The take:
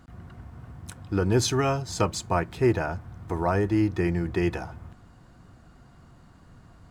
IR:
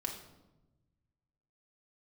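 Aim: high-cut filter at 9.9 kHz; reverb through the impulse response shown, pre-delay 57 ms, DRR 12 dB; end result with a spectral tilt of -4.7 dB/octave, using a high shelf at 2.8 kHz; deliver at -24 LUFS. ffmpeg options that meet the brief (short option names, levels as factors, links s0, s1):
-filter_complex "[0:a]lowpass=9900,highshelf=f=2800:g=7,asplit=2[s0][s1];[1:a]atrim=start_sample=2205,adelay=57[s2];[s1][s2]afir=irnorm=-1:irlink=0,volume=0.224[s3];[s0][s3]amix=inputs=2:normalize=0,volume=1.12"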